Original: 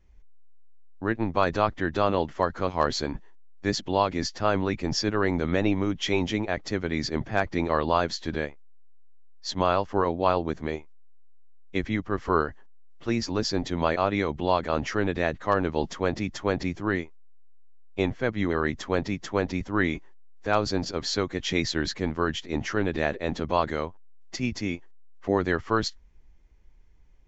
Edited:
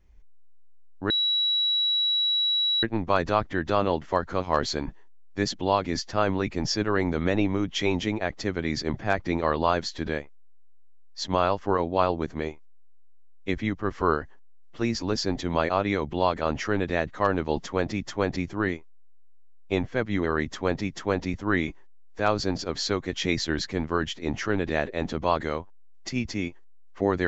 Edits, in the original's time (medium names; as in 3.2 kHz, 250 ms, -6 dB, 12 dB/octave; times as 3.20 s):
1.10 s: add tone 3.9 kHz -21 dBFS 1.73 s